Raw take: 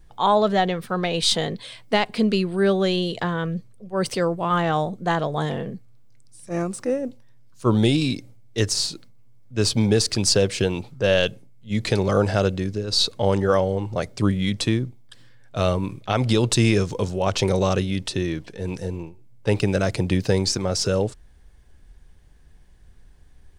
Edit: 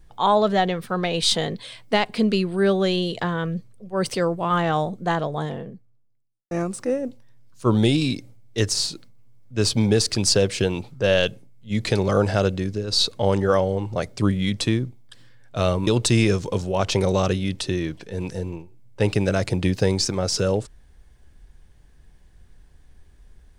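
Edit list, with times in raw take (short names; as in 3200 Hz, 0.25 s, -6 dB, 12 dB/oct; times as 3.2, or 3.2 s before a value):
4.91–6.51 studio fade out
15.87–16.34 cut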